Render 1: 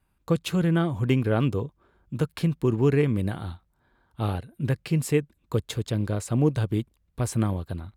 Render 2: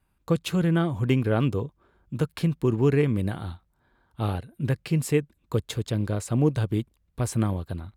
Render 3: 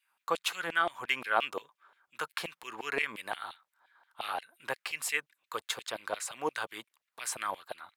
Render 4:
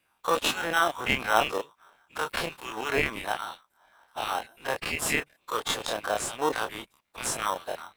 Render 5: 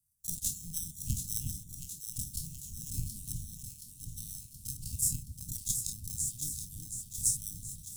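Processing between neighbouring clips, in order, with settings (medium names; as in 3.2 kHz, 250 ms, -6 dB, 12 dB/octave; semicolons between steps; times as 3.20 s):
no audible change
LFO high-pass saw down 5.7 Hz 700–2900 Hz
every event in the spectrogram widened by 60 ms; in parallel at -5.5 dB: sample-and-hold 19×
transient shaper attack +10 dB, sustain +6 dB; inverse Chebyshev band-stop 500–2000 Hz, stop band 70 dB; echo whose repeats swap between lows and highs 362 ms, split 840 Hz, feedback 78%, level -4.5 dB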